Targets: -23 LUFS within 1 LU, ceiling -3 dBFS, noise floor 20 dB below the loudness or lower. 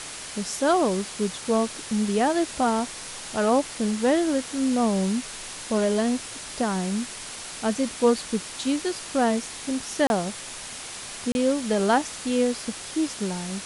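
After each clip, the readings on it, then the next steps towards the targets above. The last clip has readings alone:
dropouts 2; longest dropout 31 ms; noise floor -38 dBFS; noise floor target -46 dBFS; loudness -25.5 LUFS; peak level -7.0 dBFS; loudness target -23.0 LUFS
-> interpolate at 10.07/11.32 s, 31 ms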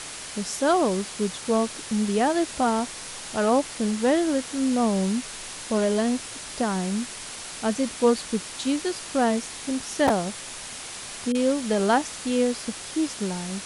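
dropouts 0; noise floor -38 dBFS; noise floor target -46 dBFS
-> noise reduction 8 dB, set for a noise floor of -38 dBFS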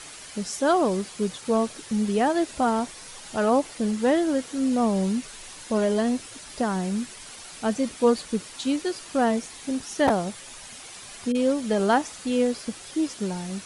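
noise floor -43 dBFS; noise floor target -46 dBFS
-> noise reduction 6 dB, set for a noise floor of -43 dBFS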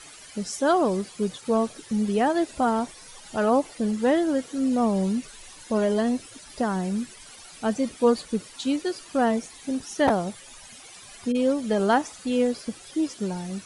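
noise floor -47 dBFS; loudness -25.5 LUFS; peak level -7.5 dBFS; loudness target -23.0 LUFS
-> trim +2.5 dB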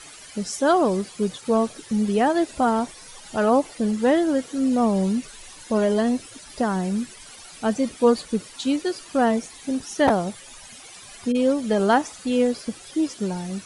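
loudness -23.0 LUFS; peak level -5.0 dBFS; noise floor -44 dBFS

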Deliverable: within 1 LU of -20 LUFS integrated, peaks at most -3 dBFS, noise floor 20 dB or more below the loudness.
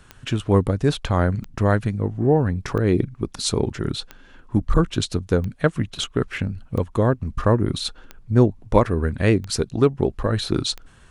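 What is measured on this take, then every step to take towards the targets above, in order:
clicks found 9; loudness -22.5 LUFS; peak level -2.5 dBFS; loudness target -20.0 LUFS
-> de-click; trim +2.5 dB; peak limiter -3 dBFS

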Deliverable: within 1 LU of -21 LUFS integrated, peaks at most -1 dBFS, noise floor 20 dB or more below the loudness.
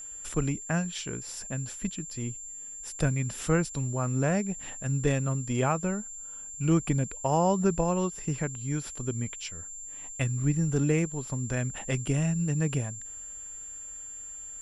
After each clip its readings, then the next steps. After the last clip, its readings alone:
steady tone 7.3 kHz; tone level -39 dBFS; loudness -30.0 LUFS; peak level -12.0 dBFS; loudness target -21.0 LUFS
-> band-stop 7.3 kHz, Q 30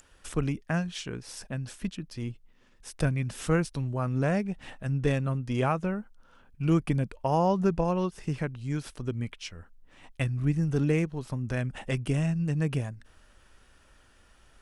steady tone not found; loudness -30.0 LUFS; peak level -12.5 dBFS; loudness target -21.0 LUFS
-> trim +9 dB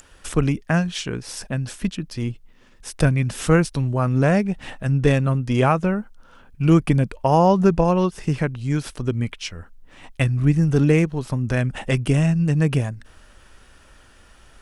loudness -21.0 LUFS; peak level -3.5 dBFS; noise floor -51 dBFS

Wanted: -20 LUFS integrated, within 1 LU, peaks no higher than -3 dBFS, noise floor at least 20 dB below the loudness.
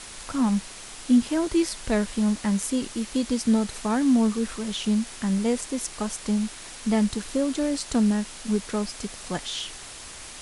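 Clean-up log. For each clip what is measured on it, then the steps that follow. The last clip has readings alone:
noise floor -41 dBFS; noise floor target -46 dBFS; loudness -25.5 LUFS; peak level -10.0 dBFS; loudness target -20.0 LUFS
-> noise reduction 6 dB, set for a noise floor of -41 dBFS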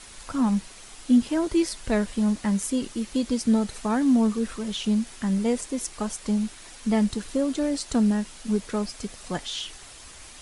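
noise floor -45 dBFS; noise floor target -46 dBFS
-> noise reduction 6 dB, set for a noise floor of -45 dBFS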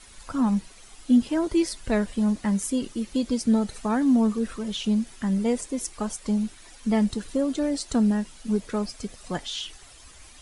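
noise floor -49 dBFS; loudness -26.0 LUFS; peak level -10.5 dBFS; loudness target -20.0 LUFS
-> trim +6 dB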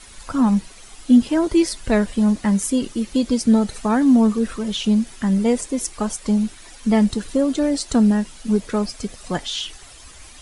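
loudness -20.0 LUFS; peak level -4.5 dBFS; noise floor -43 dBFS

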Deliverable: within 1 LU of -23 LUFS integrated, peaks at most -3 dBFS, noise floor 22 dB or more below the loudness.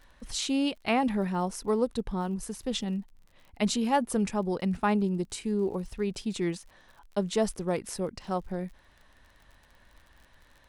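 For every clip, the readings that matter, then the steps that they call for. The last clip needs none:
tick rate 43 per s; loudness -30.0 LUFS; peak level -13.0 dBFS; loudness target -23.0 LUFS
-> de-click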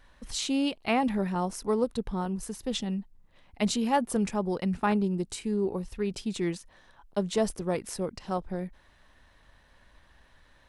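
tick rate 0 per s; loudness -30.0 LUFS; peak level -13.0 dBFS; loudness target -23.0 LUFS
-> trim +7 dB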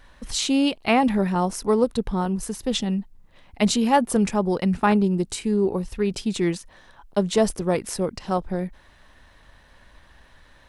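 loudness -23.0 LUFS; peak level -6.0 dBFS; noise floor -54 dBFS

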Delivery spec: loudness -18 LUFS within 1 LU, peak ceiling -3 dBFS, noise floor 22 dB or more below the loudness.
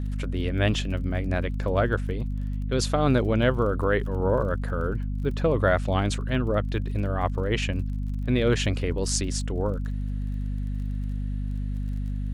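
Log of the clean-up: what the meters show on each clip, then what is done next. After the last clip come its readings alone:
tick rate 33 per s; hum 50 Hz; highest harmonic 250 Hz; hum level -26 dBFS; loudness -26.5 LUFS; peak level -7.5 dBFS; loudness target -18.0 LUFS
-> de-click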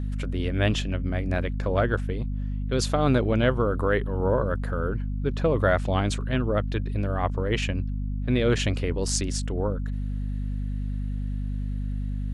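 tick rate 0 per s; hum 50 Hz; highest harmonic 250 Hz; hum level -26 dBFS
-> hum notches 50/100/150/200/250 Hz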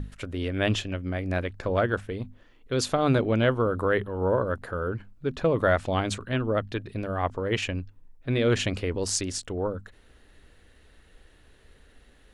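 hum not found; loudness -27.5 LUFS; peak level -8.0 dBFS; loudness target -18.0 LUFS
-> trim +9.5 dB; peak limiter -3 dBFS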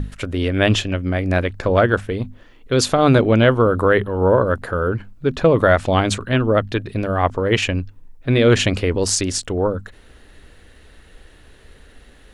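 loudness -18.0 LUFS; peak level -3.0 dBFS; noise floor -48 dBFS

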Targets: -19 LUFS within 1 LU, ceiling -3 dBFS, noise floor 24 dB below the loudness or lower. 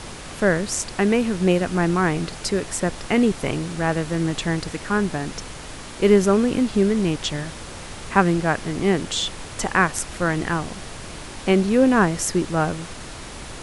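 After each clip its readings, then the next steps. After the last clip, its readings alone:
noise floor -37 dBFS; noise floor target -46 dBFS; loudness -21.5 LUFS; peak level -2.0 dBFS; loudness target -19.0 LUFS
-> noise print and reduce 9 dB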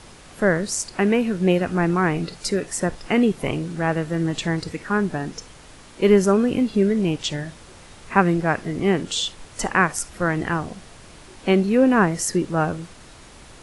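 noise floor -45 dBFS; noise floor target -46 dBFS
-> noise print and reduce 6 dB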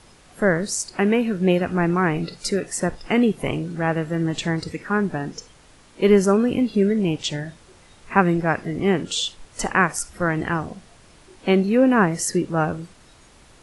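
noise floor -51 dBFS; loudness -21.5 LUFS; peak level -2.0 dBFS; loudness target -19.0 LUFS
-> trim +2.5 dB; peak limiter -3 dBFS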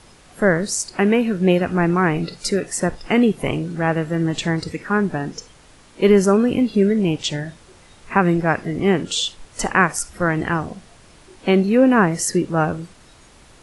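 loudness -19.5 LUFS; peak level -3.0 dBFS; noise floor -49 dBFS

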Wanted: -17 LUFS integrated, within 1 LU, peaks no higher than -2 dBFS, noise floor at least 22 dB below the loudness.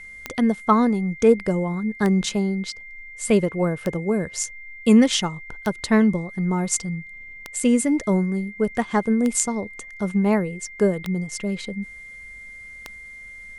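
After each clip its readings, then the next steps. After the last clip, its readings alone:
clicks found 8; steady tone 2.1 kHz; tone level -38 dBFS; loudness -22.0 LUFS; peak level -2.0 dBFS; loudness target -17.0 LUFS
-> de-click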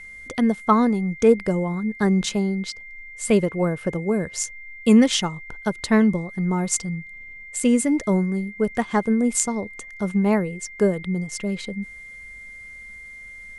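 clicks found 0; steady tone 2.1 kHz; tone level -38 dBFS
-> band-stop 2.1 kHz, Q 30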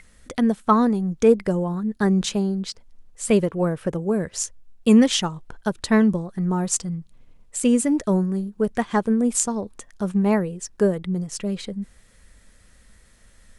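steady tone not found; loudness -22.0 LUFS; peak level -2.0 dBFS; loudness target -17.0 LUFS
-> trim +5 dB; peak limiter -2 dBFS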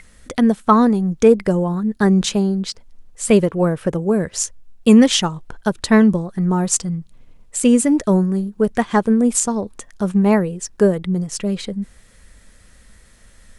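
loudness -17.5 LUFS; peak level -2.0 dBFS; noise floor -49 dBFS

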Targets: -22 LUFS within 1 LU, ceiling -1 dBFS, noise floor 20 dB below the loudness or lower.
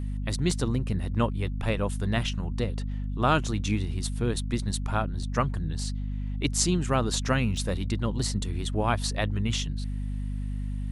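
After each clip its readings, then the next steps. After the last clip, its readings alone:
dropouts 4; longest dropout 1.6 ms; hum 50 Hz; highest harmonic 250 Hz; hum level -28 dBFS; loudness -28.5 LUFS; peak level -8.5 dBFS; loudness target -22.0 LUFS
-> interpolate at 0.51/1.47/5.23/7.57 s, 1.6 ms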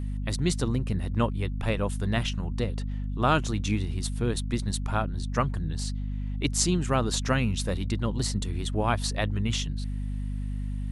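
dropouts 0; hum 50 Hz; highest harmonic 250 Hz; hum level -28 dBFS
-> hum notches 50/100/150/200/250 Hz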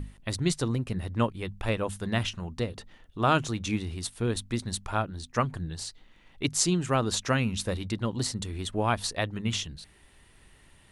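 hum not found; loudness -30.0 LUFS; peak level -8.0 dBFS; loudness target -22.0 LUFS
-> trim +8 dB; peak limiter -1 dBFS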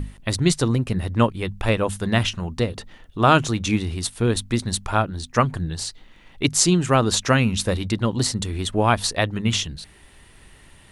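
loudness -22.0 LUFS; peak level -1.0 dBFS; noise floor -50 dBFS

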